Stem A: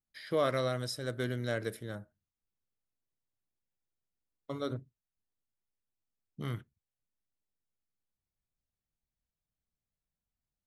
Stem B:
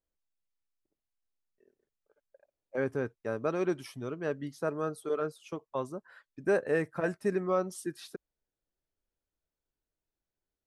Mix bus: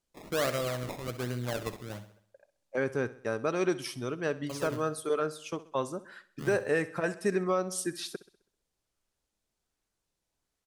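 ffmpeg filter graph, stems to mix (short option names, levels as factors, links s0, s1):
-filter_complex "[0:a]highshelf=f=8500:g=6,acrusher=samples=20:mix=1:aa=0.000001:lfo=1:lforange=20:lforate=1.3,volume=0.944,asplit=2[s0][s1];[s1]volume=0.237[s2];[1:a]lowpass=9900,highshelf=f=2400:g=10.5,volume=1.26,asplit=2[s3][s4];[s4]volume=0.133[s5];[s2][s5]amix=inputs=2:normalize=0,aecho=0:1:65|130|195|260|325|390|455:1|0.47|0.221|0.104|0.0488|0.0229|0.0108[s6];[s0][s3][s6]amix=inputs=3:normalize=0,alimiter=limit=0.133:level=0:latency=1:release=227"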